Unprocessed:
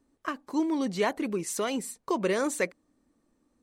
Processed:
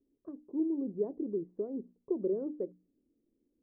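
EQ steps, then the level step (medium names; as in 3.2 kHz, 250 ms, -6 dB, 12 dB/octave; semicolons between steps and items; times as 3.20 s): four-pole ladder low-pass 460 Hz, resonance 50%; hum notches 60/120/180/240/300 Hz; 0.0 dB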